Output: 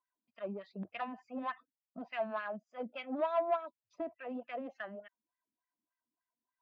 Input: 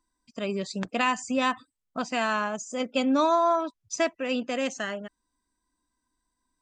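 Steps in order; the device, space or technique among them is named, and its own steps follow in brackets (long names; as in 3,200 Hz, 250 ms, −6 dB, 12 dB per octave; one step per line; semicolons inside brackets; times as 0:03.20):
wah-wah guitar rig (LFO wah 3.4 Hz 220–2,200 Hz, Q 2.3; tube saturation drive 24 dB, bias 0.25; loudspeaker in its box 89–3,900 Hz, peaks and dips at 97 Hz +9 dB, 280 Hz −5 dB, 400 Hz −3 dB, 670 Hz +8 dB)
level −5 dB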